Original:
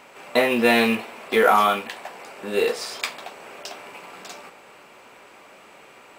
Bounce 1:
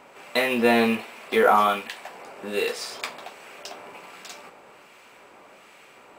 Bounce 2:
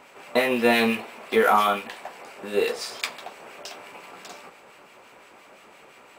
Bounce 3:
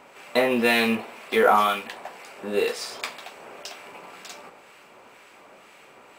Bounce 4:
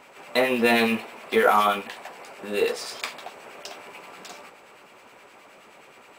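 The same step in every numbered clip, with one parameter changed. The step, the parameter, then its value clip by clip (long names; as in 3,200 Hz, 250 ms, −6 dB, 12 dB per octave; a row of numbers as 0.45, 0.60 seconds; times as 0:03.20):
two-band tremolo in antiphase, speed: 1.3, 5.8, 2, 9.5 Hertz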